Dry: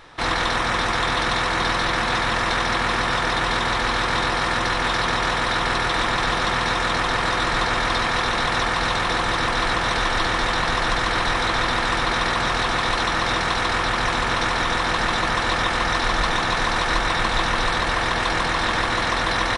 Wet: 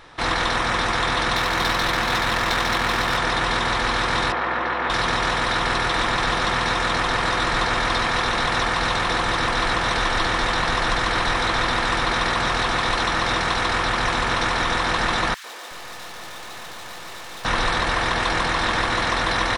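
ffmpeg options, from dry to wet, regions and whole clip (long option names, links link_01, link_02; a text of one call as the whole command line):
ffmpeg -i in.wav -filter_complex "[0:a]asettb=1/sr,asplit=3[link_01][link_02][link_03];[link_01]atrim=end=1.364[link_04];[link_02]atrim=start=1.36:end=3.17,asetpts=PTS-STARTPTS,afade=type=in:duration=0.004:curve=qsin,afade=type=out:start_time=1.806:duration=0.004:curve=qsin,highshelf=frequency=5000:gain=8.5,adynamicsmooth=sensitivity=2.5:basefreq=2900,aeval=exprs='sgn(val(0))*max(abs(val(0))-0.00596,0)':channel_layout=same[link_05];[link_03]atrim=start=3.166[link_06];[link_04][link_05]acrossfade=duration=0.004:curve1=hsin:curve2=qsin[link_07];[link_07][link_06]acrossfade=duration=0.004:curve1=qsin:curve2=hsin,asettb=1/sr,asplit=3[link_08][link_09][link_10];[link_08]atrim=end=4.324[link_11];[link_09]atrim=start=4.32:end=4.9,asetpts=PTS-STARTPTS,afade=type=in:duration=0.004:curve=qsin,afade=type=out:start_time=0.576:duration=0.004:curve=qsin,highpass=270,lowpass=2100,aeval=exprs='val(0)+0.00891*(sin(2*PI*60*n/s)+sin(2*PI*2*60*n/s)/2+sin(2*PI*3*60*n/s)/3+sin(2*PI*4*60*n/s)/4+sin(2*PI*5*60*n/s)/5)':channel_layout=same[link_12];[link_10]atrim=start=4.896[link_13];[link_11][link_12]acrossfade=duration=0.004:curve1=hsin:curve2=qsin[link_14];[link_14][link_13]acrossfade=duration=0.004:curve1=qsin:curve2=hsin,asettb=1/sr,asplit=3[link_15][link_16][link_17];[link_15]atrim=end=15.344[link_18];[link_16]atrim=start=15.34:end=17.45,asetpts=PTS-STARTPTS,afade=type=in:duration=0.004:curve=qsin,afade=type=out:start_time=2.106:duration=0.004:curve=qsin,highpass=190,lowpass=7100,aeval=exprs='(tanh(56.2*val(0)+0.75)-tanh(0.75))/56.2':channel_layout=same,acrossover=split=270|1400[link_19][link_20][link_21];[link_20]adelay=100[link_22];[link_19]adelay=370[link_23];[link_23][link_22][link_21]amix=inputs=3:normalize=0,atrim=end_sample=93051[link_24];[link_17]atrim=start=17.446[link_25];[link_18][link_24]acrossfade=duration=0.004:curve1=hsin:curve2=qsin[link_26];[link_26][link_25]acrossfade=duration=0.004:curve1=qsin:curve2=hsin" out.wav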